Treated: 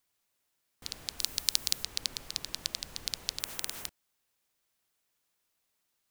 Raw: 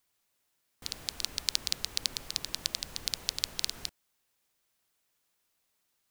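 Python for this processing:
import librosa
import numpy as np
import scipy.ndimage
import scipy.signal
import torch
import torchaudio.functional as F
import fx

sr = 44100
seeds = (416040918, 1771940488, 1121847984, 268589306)

y = fx.high_shelf(x, sr, hz=7700.0, db=12.0, at=(1.19, 1.84))
y = fx.spectral_comp(y, sr, ratio=4.0, at=(3.4, 3.87))
y = F.gain(torch.from_numpy(y), -2.0).numpy()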